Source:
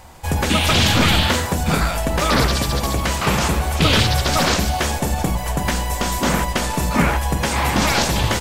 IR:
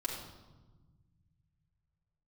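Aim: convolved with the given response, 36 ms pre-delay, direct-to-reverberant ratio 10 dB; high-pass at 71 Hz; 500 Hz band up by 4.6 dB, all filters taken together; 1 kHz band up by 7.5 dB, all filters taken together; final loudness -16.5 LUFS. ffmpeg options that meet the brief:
-filter_complex "[0:a]highpass=71,equalizer=f=500:t=o:g=3,equalizer=f=1000:t=o:g=8.5,asplit=2[s0][s1];[1:a]atrim=start_sample=2205,adelay=36[s2];[s1][s2]afir=irnorm=-1:irlink=0,volume=0.237[s3];[s0][s3]amix=inputs=2:normalize=0,volume=0.891"

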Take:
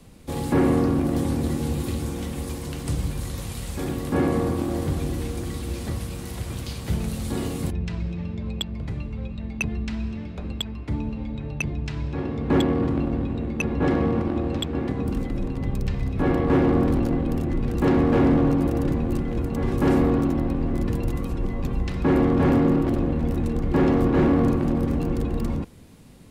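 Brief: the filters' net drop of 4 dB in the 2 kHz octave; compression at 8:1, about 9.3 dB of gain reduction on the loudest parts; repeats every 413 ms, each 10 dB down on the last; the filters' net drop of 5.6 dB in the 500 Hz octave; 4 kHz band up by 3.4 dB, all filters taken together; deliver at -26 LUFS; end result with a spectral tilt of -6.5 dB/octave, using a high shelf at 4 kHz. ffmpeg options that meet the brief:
-af "equalizer=f=500:t=o:g=-7.5,equalizer=f=2000:t=o:g=-8,highshelf=f=4000:g=4,equalizer=f=4000:t=o:g=5,acompressor=threshold=0.0447:ratio=8,aecho=1:1:413|826|1239|1652:0.316|0.101|0.0324|0.0104,volume=2"

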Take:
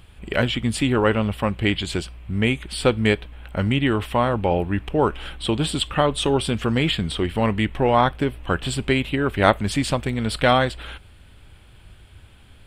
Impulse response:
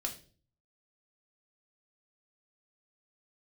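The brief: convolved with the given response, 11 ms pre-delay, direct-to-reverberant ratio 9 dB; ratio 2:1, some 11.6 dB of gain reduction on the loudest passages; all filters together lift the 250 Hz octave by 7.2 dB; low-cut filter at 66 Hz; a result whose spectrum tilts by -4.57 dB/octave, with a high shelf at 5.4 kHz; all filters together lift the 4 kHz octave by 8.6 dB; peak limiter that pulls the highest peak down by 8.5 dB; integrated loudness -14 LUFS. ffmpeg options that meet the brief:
-filter_complex "[0:a]highpass=66,equalizer=f=250:t=o:g=8.5,equalizer=f=4000:t=o:g=9,highshelf=f=5400:g=6.5,acompressor=threshold=0.0282:ratio=2,alimiter=limit=0.126:level=0:latency=1,asplit=2[s0][s1];[1:a]atrim=start_sample=2205,adelay=11[s2];[s1][s2]afir=irnorm=-1:irlink=0,volume=0.316[s3];[s0][s3]amix=inputs=2:normalize=0,volume=5.31"

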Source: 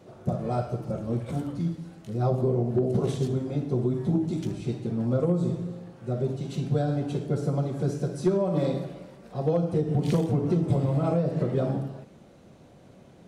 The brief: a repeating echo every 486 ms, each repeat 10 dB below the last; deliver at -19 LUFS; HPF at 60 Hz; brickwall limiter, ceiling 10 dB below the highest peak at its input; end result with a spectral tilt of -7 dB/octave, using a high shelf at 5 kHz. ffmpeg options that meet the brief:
-af "highpass=60,highshelf=f=5000:g=6.5,alimiter=limit=0.0708:level=0:latency=1,aecho=1:1:486|972|1458|1944:0.316|0.101|0.0324|0.0104,volume=4.22"

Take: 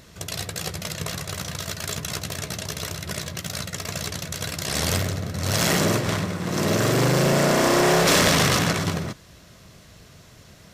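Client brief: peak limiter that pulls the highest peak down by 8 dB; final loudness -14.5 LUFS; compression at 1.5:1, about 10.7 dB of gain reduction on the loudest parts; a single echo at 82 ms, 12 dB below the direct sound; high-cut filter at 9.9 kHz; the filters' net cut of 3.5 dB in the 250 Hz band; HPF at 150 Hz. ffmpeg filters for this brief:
-af "highpass=150,lowpass=9900,equalizer=f=250:t=o:g=-4,acompressor=threshold=0.00447:ratio=1.5,alimiter=level_in=1.41:limit=0.0631:level=0:latency=1,volume=0.708,aecho=1:1:82:0.251,volume=14.1"

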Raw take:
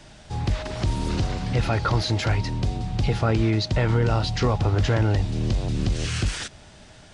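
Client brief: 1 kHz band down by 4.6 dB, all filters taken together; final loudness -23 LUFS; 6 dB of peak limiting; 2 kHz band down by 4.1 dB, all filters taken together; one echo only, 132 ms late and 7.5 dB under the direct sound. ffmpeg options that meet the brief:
-af "equalizer=f=1000:t=o:g=-5.5,equalizer=f=2000:t=o:g=-3.5,alimiter=limit=0.15:level=0:latency=1,aecho=1:1:132:0.422,volume=1.5"

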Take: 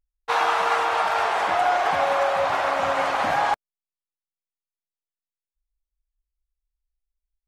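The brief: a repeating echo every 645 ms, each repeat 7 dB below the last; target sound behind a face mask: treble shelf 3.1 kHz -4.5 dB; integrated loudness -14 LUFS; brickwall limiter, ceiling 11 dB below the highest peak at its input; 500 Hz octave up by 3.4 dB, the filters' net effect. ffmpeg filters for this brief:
-af "equalizer=f=500:t=o:g=4.5,alimiter=limit=0.119:level=0:latency=1,highshelf=f=3100:g=-4.5,aecho=1:1:645|1290|1935|2580|3225:0.447|0.201|0.0905|0.0407|0.0183,volume=4.47"

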